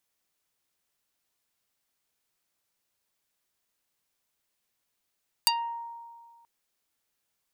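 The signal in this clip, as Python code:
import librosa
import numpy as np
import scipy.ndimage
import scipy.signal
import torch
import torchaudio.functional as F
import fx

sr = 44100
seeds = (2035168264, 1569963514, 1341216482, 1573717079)

y = fx.pluck(sr, length_s=0.98, note=82, decay_s=1.84, pick=0.49, brightness='dark')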